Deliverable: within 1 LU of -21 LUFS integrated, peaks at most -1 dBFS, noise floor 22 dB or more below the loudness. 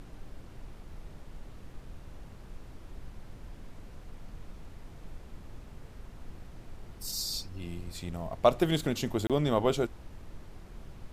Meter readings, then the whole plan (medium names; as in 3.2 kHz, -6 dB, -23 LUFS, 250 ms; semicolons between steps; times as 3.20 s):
dropouts 1; longest dropout 27 ms; noise floor -49 dBFS; noise floor target -53 dBFS; loudness -30.5 LUFS; peak level -9.5 dBFS; loudness target -21.0 LUFS
-> interpolate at 9.27 s, 27 ms; noise print and reduce 6 dB; trim +9.5 dB; peak limiter -1 dBFS